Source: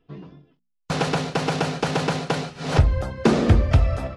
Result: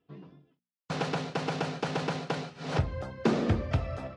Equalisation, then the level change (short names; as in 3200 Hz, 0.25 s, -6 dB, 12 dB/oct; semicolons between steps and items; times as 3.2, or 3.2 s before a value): HPF 100 Hz 12 dB/oct; Bessel low-pass 6200 Hz, order 2; -8.0 dB